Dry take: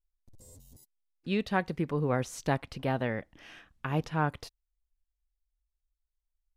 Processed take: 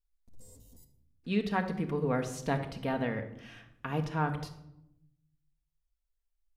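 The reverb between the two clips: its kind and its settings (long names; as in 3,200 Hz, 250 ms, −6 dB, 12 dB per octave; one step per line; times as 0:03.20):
rectangular room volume 2,300 cubic metres, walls furnished, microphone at 1.7 metres
level −3 dB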